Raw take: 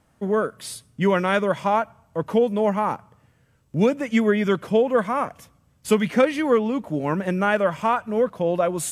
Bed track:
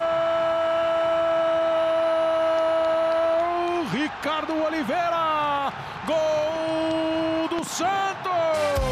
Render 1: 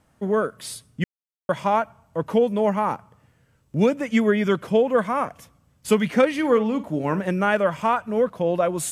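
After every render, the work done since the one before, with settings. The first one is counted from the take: 1.04–1.49 s: mute; 6.34–7.20 s: flutter echo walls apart 8.7 m, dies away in 0.22 s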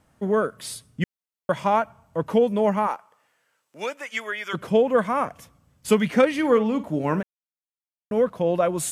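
2.86–4.53 s: high-pass 550 Hz -> 1.2 kHz; 7.23–8.11 s: mute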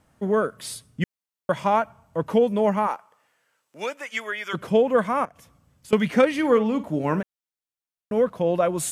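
5.25–5.93 s: compression 2.5:1, threshold -49 dBFS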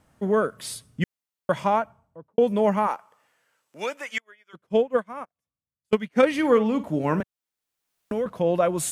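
1.56–2.38 s: studio fade out; 4.18–6.23 s: upward expansion 2.5:1, over -39 dBFS; 7.20–8.26 s: three bands compressed up and down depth 70%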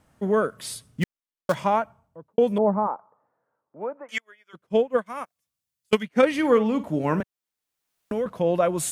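0.87–1.55 s: dead-time distortion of 0.089 ms; 2.58–4.09 s: low-pass 1.1 kHz 24 dB/octave; 5.06–6.03 s: treble shelf 2 kHz +11 dB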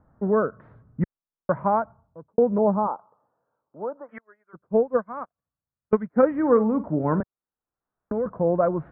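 steep low-pass 1.5 kHz 36 dB/octave; bass shelf 110 Hz +6 dB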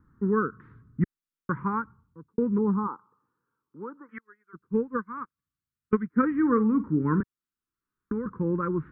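Chebyshev band-stop 340–1300 Hz, order 2; peaking EQ 790 Hz +4.5 dB 1.4 oct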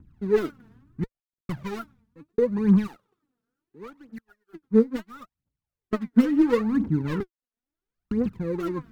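median filter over 41 samples; phaser 0.73 Hz, delay 4.6 ms, feedback 73%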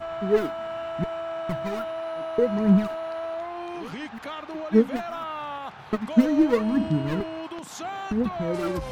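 add bed track -10 dB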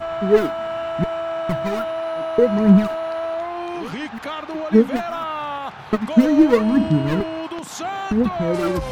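trim +6.5 dB; peak limiter -3 dBFS, peak gain reduction 3 dB

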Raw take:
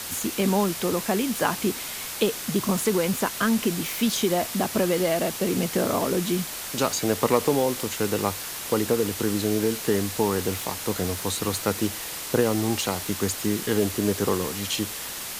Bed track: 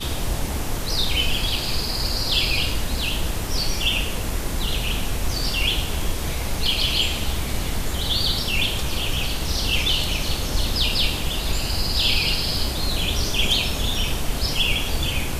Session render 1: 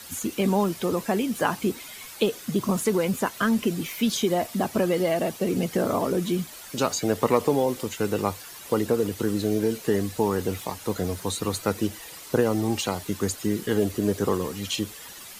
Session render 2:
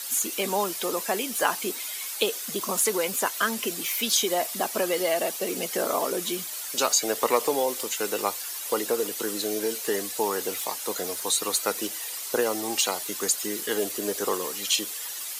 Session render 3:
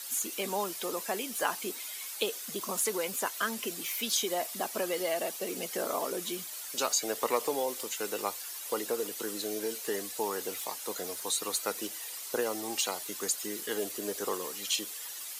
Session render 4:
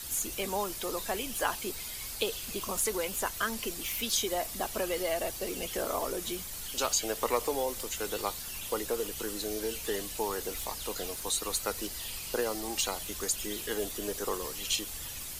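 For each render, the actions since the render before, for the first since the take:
noise reduction 11 dB, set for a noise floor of -34 dBFS
high-pass 440 Hz 12 dB/octave; treble shelf 3.6 kHz +10 dB
trim -6.5 dB
add bed track -24.5 dB

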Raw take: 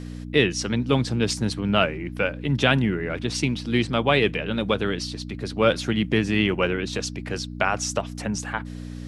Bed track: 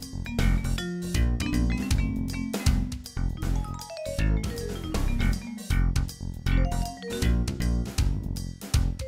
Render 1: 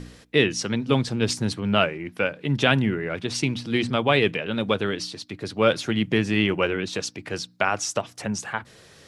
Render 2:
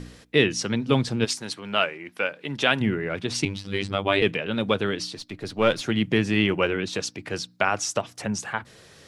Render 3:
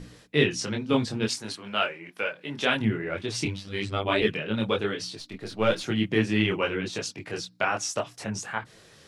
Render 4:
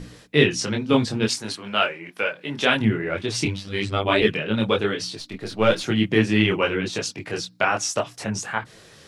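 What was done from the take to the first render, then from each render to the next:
de-hum 60 Hz, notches 5
1.24–2.80 s: high-pass 970 Hz -> 430 Hz 6 dB/octave; 3.45–4.22 s: robot voice 98.2 Hz; 5.17–5.81 s: partial rectifier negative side -3 dB
chorus voices 4, 0.91 Hz, delay 23 ms, depth 5 ms
trim +5 dB

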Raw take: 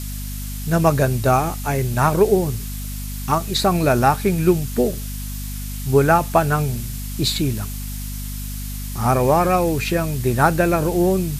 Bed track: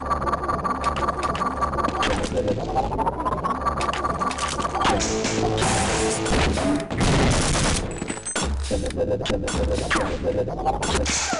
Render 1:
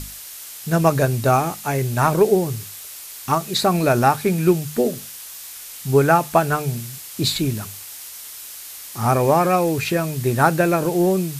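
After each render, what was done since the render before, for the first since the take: hum notches 50/100/150/200/250 Hz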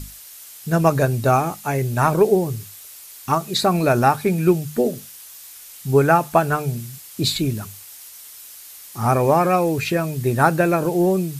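noise reduction 6 dB, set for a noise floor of -37 dBFS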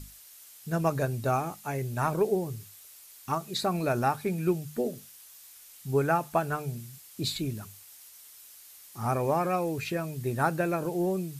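trim -10.5 dB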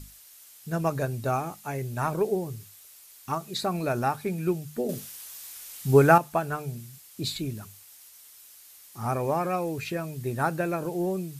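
4.89–6.18 s: gain +8.5 dB

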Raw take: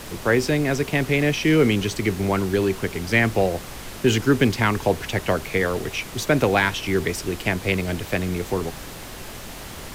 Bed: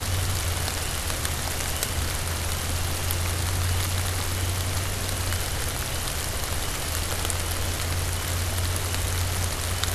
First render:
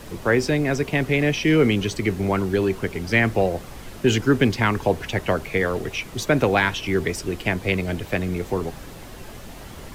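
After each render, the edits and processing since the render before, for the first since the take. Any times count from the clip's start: noise reduction 7 dB, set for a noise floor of -37 dBFS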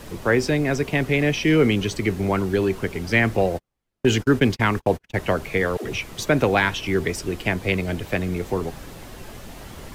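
3.37–5.18 s: gate -28 dBFS, range -44 dB; 5.77–6.19 s: phase dispersion lows, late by 79 ms, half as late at 320 Hz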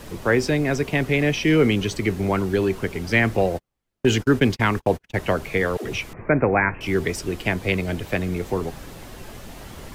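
6.13–6.81 s: steep low-pass 2.4 kHz 96 dB/octave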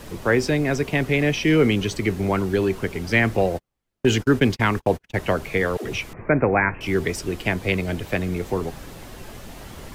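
no audible change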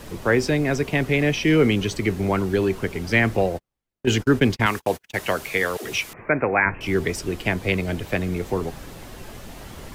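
3.34–4.07 s: fade out, to -9.5 dB; 4.66–6.66 s: tilt EQ +2.5 dB/octave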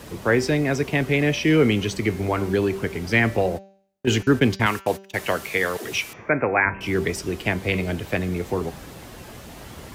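high-pass 51 Hz; de-hum 194.7 Hz, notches 37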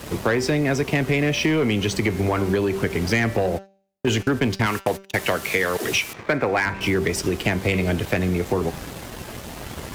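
waveshaping leveller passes 2; compression, threshold -18 dBFS, peak gain reduction 9 dB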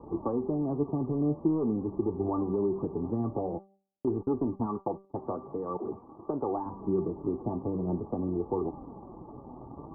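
flange 0.47 Hz, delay 2 ms, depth 6.3 ms, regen +56%; rippled Chebyshev low-pass 1.2 kHz, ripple 9 dB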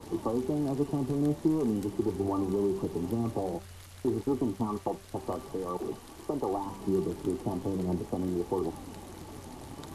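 add bed -23.5 dB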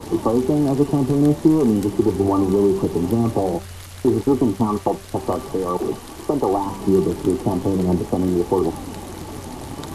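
trim +12 dB

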